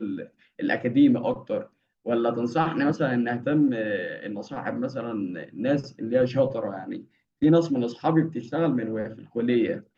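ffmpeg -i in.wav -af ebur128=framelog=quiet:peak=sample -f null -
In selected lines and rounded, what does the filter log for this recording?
Integrated loudness:
  I:         -25.5 LUFS
  Threshold: -35.8 LUFS
Loudness range:
  LRA:         3.3 LU
  Threshold: -46.0 LUFS
  LRA low:   -27.9 LUFS
  LRA high:  -24.6 LUFS
Sample peak:
  Peak:       -8.4 dBFS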